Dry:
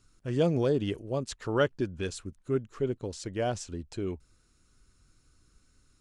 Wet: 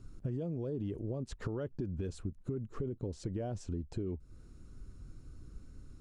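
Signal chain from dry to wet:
tilt shelving filter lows +9.5 dB, about 820 Hz
brickwall limiter −22 dBFS, peak gain reduction 13 dB
downward compressor 5 to 1, threshold −41 dBFS, peak gain reduction 13.5 dB
level +5.5 dB

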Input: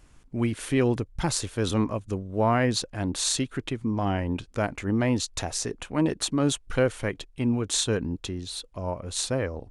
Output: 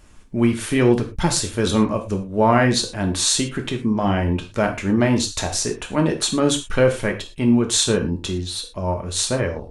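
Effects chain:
reverb whose tail is shaped and stops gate 140 ms falling, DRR 3 dB
level +5.5 dB

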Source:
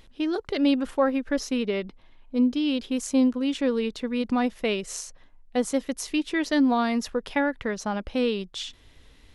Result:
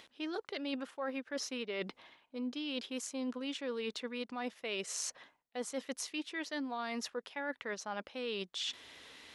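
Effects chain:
meter weighting curve A
reversed playback
downward compressor 8 to 1, threshold −42 dBFS, peak gain reduction 22 dB
reversed playback
level +5.5 dB

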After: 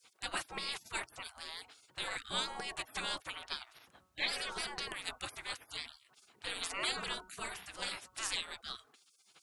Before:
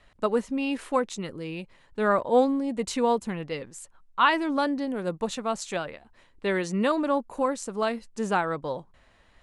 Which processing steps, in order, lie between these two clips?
hum removal 185 Hz, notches 8
gate on every frequency bin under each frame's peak −30 dB weak
level +10.5 dB

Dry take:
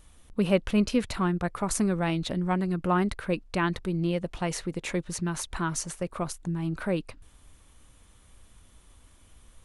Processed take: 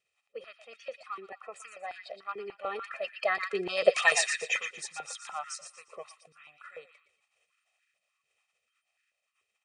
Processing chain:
spectral magnitudes quantised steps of 30 dB
source passing by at 0:03.99, 30 m/s, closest 3.3 metres
Chebyshev low-pass filter 9,800 Hz, order 10
parametric band 2,500 Hz +15 dB 0.63 octaves
comb filter 1.6 ms, depth 99%
dynamic equaliser 7,200 Hz, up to +6 dB, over −59 dBFS, Q 0.83
delay with a high-pass on its return 118 ms, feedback 33%, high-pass 1,400 Hz, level −8.5 dB
high-pass on a step sequencer 6.8 Hz 390–1,600 Hz
level +6 dB

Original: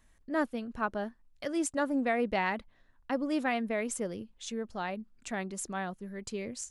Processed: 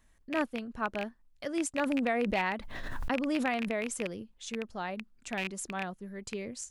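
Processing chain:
loose part that buzzes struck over −39 dBFS, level −22 dBFS
0:01.79–0:03.75: background raised ahead of every attack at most 27 dB per second
level −1 dB

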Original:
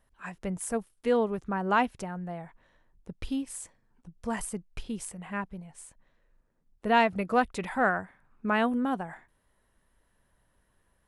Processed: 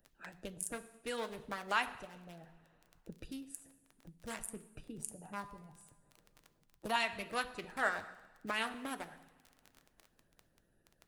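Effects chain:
adaptive Wiener filter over 41 samples
first-order pre-emphasis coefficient 0.9
flanger 0.28 Hz, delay 5.8 ms, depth 1.1 ms, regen +63%
0:04.97–0:06.96: octave-band graphic EQ 125/1,000/2,000 Hz +7/+10/−8 dB
surface crackle 16 per second −66 dBFS
coupled-rooms reverb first 0.81 s, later 2.2 s, from −23 dB, DRR 8 dB
harmonic and percussive parts rebalanced harmonic −9 dB
multiband upward and downward compressor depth 40%
level +16.5 dB

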